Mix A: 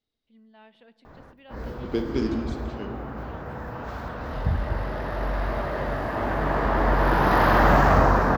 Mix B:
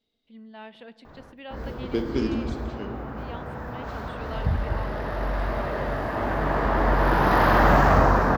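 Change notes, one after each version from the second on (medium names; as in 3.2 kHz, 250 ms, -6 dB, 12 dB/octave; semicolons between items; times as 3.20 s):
first voice +9.5 dB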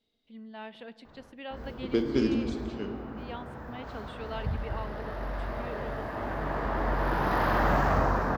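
background -7.5 dB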